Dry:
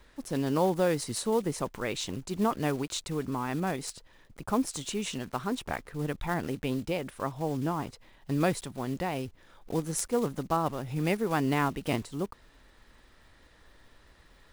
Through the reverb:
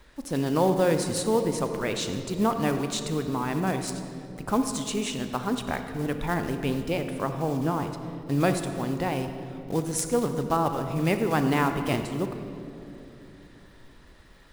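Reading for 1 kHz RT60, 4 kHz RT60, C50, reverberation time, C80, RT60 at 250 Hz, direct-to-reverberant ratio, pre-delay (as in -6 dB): 2.5 s, 1.6 s, 7.5 dB, 3.0 s, 8.5 dB, 3.7 s, 7.0 dB, 36 ms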